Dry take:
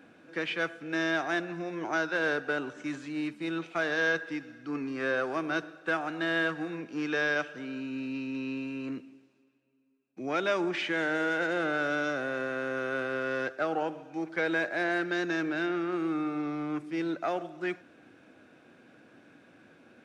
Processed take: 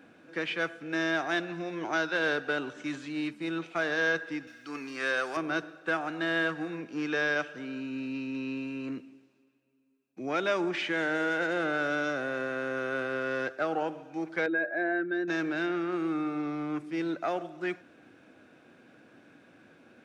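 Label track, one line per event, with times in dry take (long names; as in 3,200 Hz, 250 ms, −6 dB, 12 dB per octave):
1.310000	3.310000	parametric band 3,500 Hz +5 dB 0.85 octaves
4.470000	5.370000	spectral tilt +3.5 dB per octave
14.460000	15.280000	expanding power law on the bin magnitudes exponent 1.7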